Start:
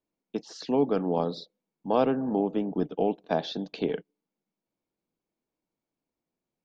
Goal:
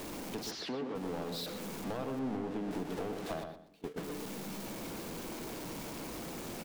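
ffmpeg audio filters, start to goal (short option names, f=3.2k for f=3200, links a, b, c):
-filter_complex "[0:a]aeval=exprs='val(0)+0.5*0.0376*sgn(val(0))':c=same,asettb=1/sr,asplit=3[a][b][c];[a]atrim=end=2.194[d];[b]atrim=start=2.19:end=2.71,asetpts=PTS-STARTPTS,afade=t=in:d=0.004:c=qsin,afade=t=out:st=0.516:d=0.004:c=qsin,aemphasis=mode=reproduction:type=50kf[e];[c]atrim=start=2.706[f];[d][e]acrossfade=d=0.004:c1=hsin:c2=qsin[g];[g][f]acrossfade=d=0.004:c1=qsin:c2=hsin,asplit=3[h][i][j];[h]afade=t=out:st=3.42:d=0.02[k];[i]agate=range=-28dB:threshold=-22dB:ratio=16:detection=peak,afade=t=in:st=3.42:d=0.02,afade=t=out:st=3.96:d=0.02[l];[j]afade=t=in:st=3.96:d=0.02[m];[k][l][m]amix=inputs=3:normalize=0,acompressor=threshold=-27dB:ratio=5,aeval=exprs='clip(val(0),-1,0.0316)':c=same,asplit=3[n][o][p];[n]afade=t=out:st=0.5:d=0.02[q];[o]highpass=170,lowpass=4.1k,afade=t=in:st=0.5:d=0.02,afade=t=out:st=0.94:d=0.02[r];[p]afade=t=in:st=0.94:d=0.02[s];[q][r][s]amix=inputs=3:normalize=0,asplit=2[t][u];[u]adelay=122,lowpass=f=1.9k:p=1,volume=-5.5dB,asplit=2[v][w];[w]adelay=122,lowpass=f=1.9k:p=1,volume=0.27,asplit=2[x][y];[y]adelay=122,lowpass=f=1.9k:p=1,volume=0.27,asplit=2[z][aa];[aa]adelay=122,lowpass=f=1.9k:p=1,volume=0.27[ab];[t][v][x][z][ab]amix=inputs=5:normalize=0,volume=-7dB"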